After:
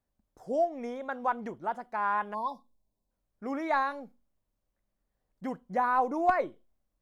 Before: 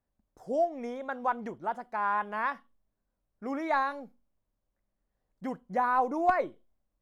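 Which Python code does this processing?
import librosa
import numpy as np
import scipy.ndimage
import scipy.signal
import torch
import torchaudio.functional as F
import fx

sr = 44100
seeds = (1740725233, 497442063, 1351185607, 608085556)

y = fx.spec_erase(x, sr, start_s=2.34, length_s=0.76, low_hz=1100.0, high_hz=3400.0)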